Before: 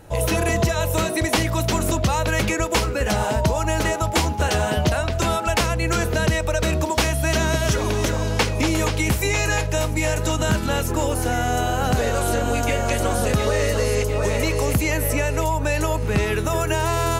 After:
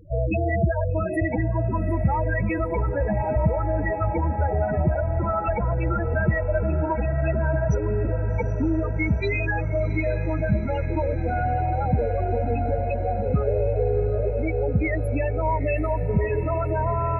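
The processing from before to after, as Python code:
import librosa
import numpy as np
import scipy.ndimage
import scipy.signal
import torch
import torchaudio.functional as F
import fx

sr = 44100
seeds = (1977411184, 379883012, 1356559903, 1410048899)

y = fx.spec_topn(x, sr, count=8)
y = fx.echo_diffused(y, sr, ms=788, feedback_pct=71, wet_db=-13.0)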